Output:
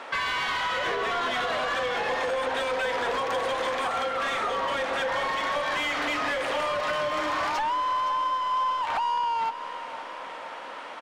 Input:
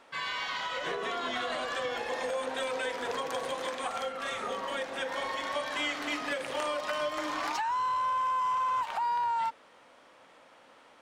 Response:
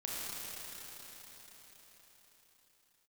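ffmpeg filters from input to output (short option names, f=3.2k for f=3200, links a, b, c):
-filter_complex "[0:a]asplit=2[a][b];[b]highpass=f=720:p=1,volume=19dB,asoftclip=type=tanh:threshold=-20dB[c];[a][c]amix=inputs=2:normalize=0,lowpass=f=2.2k:p=1,volume=-6dB,acompressor=threshold=-33dB:ratio=6,aecho=1:1:516|1032|1548|2064|2580|3096:0.224|0.13|0.0753|0.0437|0.0253|0.0147,volume=7dB"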